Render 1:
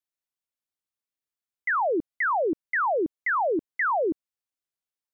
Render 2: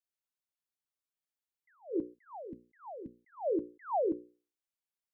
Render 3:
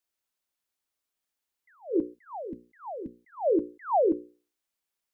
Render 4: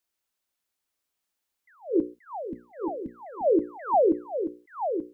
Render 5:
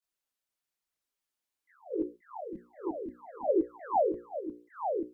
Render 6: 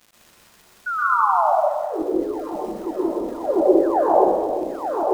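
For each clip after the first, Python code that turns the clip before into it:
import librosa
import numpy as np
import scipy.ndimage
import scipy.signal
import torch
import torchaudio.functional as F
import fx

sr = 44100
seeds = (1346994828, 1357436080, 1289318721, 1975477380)

y1 = fx.hum_notches(x, sr, base_hz=60, count=9)
y1 = fx.spec_box(y1, sr, start_s=2.14, length_s=1.23, low_hz=260.0, high_hz=1600.0, gain_db=-15)
y1 = fx.attack_slew(y1, sr, db_per_s=220.0)
y1 = y1 * 10.0 ** (-4.5 / 20.0)
y2 = fx.peak_eq(y1, sr, hz=130.0, db=-9.5, octaves=0.49)
y2 = y2 * 10.0 ** (7.5 / 20.0)
y3 = y2 + 10.0 ** (-8.0 / 20.0) * np.pad(y2, (int(881 * sr / 1000.0), 0))[:len(y2)]
y3 = y3 * 10.0 ** (2.5 / 20.0)
y4 = fx.chorus_voices(y3, sr, voices=2, hz=0.52, base_ms=23, depth_ms=4.7, mix_pct=70)
y4 = y4 * 10.0 ** (-3.5 / 20.0)
y5 = fx.spec_paint(y4, sr, seeds[0], shape='fall', start_s=0.86, length_s=0.67, low_hz=570.0, high_hz=1500.0, level_db=-30.0)
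y5 = fx.dmg_crackle(y5, sr, seeds[1], per_s=290.0, level_db=-45.0)
y5 = fx.rev_plate(y5, sr, seeds[2], rt60_s=1.5, hf_ratio=0.5, predelay_ms=110, drr_db=-5.5)
y5 = y5 * 10.0 ** (5.5 / 20.0)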